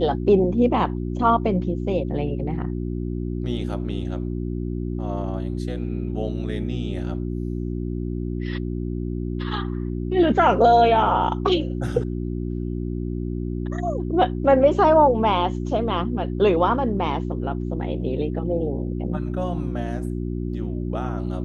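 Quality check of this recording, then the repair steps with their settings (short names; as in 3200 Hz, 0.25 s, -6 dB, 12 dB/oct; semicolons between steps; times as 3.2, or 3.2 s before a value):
hum 60 Hz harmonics 6 -27 dBFS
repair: de-hum 60 Hz, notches 6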